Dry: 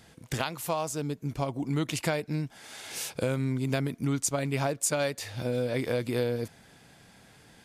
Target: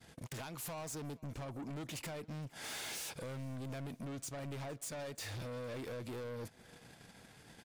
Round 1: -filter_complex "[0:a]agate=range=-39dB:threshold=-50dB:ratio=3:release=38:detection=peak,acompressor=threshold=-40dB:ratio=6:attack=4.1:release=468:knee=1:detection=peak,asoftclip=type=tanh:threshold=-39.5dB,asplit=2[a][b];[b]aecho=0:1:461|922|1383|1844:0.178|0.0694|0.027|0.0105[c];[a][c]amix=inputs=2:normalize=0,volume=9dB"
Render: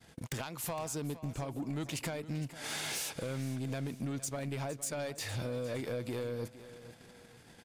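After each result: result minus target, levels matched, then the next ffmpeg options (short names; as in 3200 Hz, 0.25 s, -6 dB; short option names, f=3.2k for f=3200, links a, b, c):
echo-to-direct +9.5 dB; soft clip: distortion -8 dB
-filter_complex "[0:a]agate=range=-39dB:threshold=-50dB:ratio=3:release=38:detection=peak,acompressor=threshold=-40dB:ratio=6:attack=4.1:release=468:knee=1:detection=peak,asoftclip=type=tanh:threshold=-39.5dB,asplit=2[a][b];[b]aecho=0:1:461|922:0.0596|0.0232[c];[a][c]amix=inputs=2:normalize=0,volume=9dB"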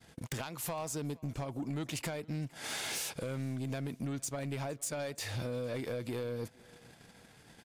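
soft clip: distortion -8 dB
-filter_complex "[0:a]agate=range=-39dB:threshold=-50dB:ratio=3:release=38:detection=peak,acompressor=threshold=-40dB:ratio=6:attack=4.1:release=468:knee=1:detection=peak,asoftclip=type=tanh:threshold=-50dB,asplit=2[a][b];[b]aecho=0:1:461|922:0.0596|0.0232[c];[a][c]amix=inputs=2:normalize=0,volume=9dB"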